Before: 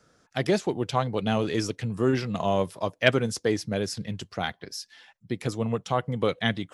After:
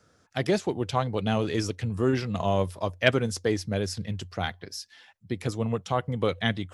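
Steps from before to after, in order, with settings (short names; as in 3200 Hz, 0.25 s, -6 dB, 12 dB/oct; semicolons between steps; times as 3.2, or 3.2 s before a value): bell 90 Hz +13.5 dB 0.23 oct; gain -1 dB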